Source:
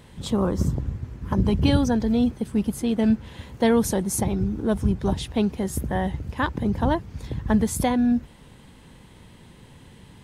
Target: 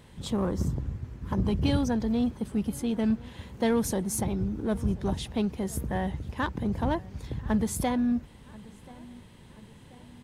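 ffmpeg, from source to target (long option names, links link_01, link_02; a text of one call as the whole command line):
ffmpeg -i in.wav -filter_complex "[0:a]asplit=2[link_01][link_02];[link_02]asoftclip=type=hard:threshold=-23.5dB,volume=-6.5dB[link_03];[link_01][link_03]amix=inputs=2:normalize=0,asplit=2[link_04][link_05];[link_05]adelay=1034,lowpass=frequency=3800:poles=1,volume=-22dB,asplit=2[link_06][link_07];[link_07]adelay=1034,lowpass=frequency=3800:poles=1,volume=0.52,asplit=2[link_08][link_09];[link_09]adelay=1034,lowpass=frequency=3800:poles=1,volume=0.52,asplit=2[link_10][link_11];[link_11]adelay=1034,lowpass=frequency=3800:poles=1,volume=0.52[link_12];[link_04][link_06][link_08][link_10][link_12]amix=inputs=5:normalize=0,volume=-7.5dB" out.wav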